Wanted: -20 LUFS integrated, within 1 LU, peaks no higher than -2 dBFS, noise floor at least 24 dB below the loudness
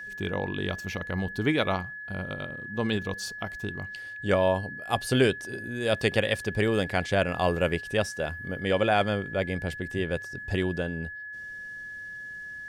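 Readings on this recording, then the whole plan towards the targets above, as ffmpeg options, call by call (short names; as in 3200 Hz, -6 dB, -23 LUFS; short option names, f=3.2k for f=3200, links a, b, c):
steady tone 1700 Hz; tone level -37 dBFS; loudness -29.0 LUFS; peak -9.5 dBFS; loudness target -20.0 LUFS
-> -af "bandreject=f=1.7k:w=30"
-af "volume=9dB,alimiter=limit=-2dB:level=0:latency=1"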